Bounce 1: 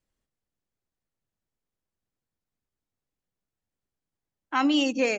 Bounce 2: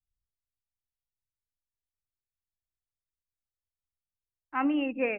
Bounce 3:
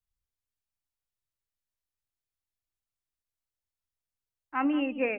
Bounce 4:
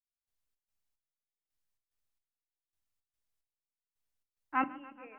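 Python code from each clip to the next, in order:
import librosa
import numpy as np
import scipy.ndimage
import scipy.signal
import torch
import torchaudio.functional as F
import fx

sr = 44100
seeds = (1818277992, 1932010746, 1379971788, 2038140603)

y1 = scipy.signal.sosfilt(scipy.signal.cheby1(6, 1.0, 2700.0, 'lowpass', fs=sr, output='sos'), x)
y1 = fx.band_widen(y1, sr, depth_pct=70)
y1 = y1 * 10.0 ** (-3.5 / 20.0)
y2 = y1 + 10.0 ** (-15.0 / 20.0) * np.pad(y1, (int(181 * sr / 1000.0), 0))[:len(y1)]
y3 = fx.step_gate(y2, sr, bpm=110, pattern='..xx.xx..', floor_db=-24.0, edge_ms=4.5)
y3 = fx.room_shoebox(y3, sr, seeds[0], volume_m3=320.0, walls='furnished', distance_m=0.42)
y3 = fx.echo_warbled(y3, sr, ms=142, feedback_pct=75, rate_hz=2.8, cents=60, wet_db=-20.0)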